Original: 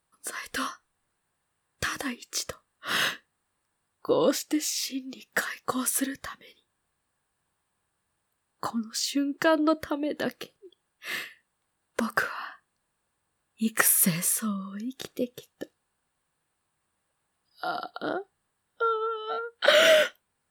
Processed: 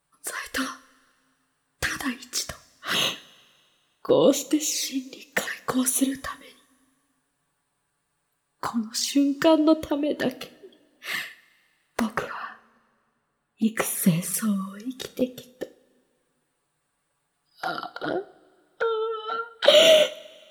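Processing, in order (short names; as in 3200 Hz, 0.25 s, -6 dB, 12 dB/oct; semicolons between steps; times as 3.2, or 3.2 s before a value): 12.06–14.34 high shelf 3300 Hz -10.5 dB; envelope flanger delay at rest 7 ms, full sweep at -25 dBFS; two-slope reverb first 0.37 s, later 2.1 s, from -18 dB, DRR 11 dB; gain +6 dB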